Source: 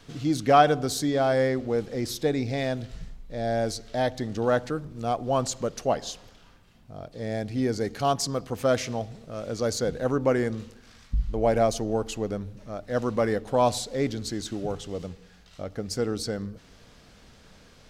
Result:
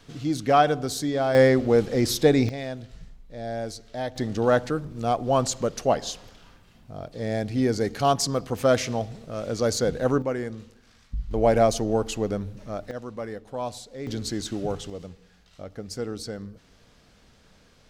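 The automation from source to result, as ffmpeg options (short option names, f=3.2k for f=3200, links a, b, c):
-af "asetnsamples=n=441:p=0,asendcmd='1.35 volume volume 7dB;2.49 volume volume -5dB;4.16 volume volume 3dB;10.22 volume volume -5dB;11.31 volume volume 3dB;12.91 volume volume -9.5dB;14.07 volume volume 2dB;14.9 volume volume -4dB',volume=-1dB"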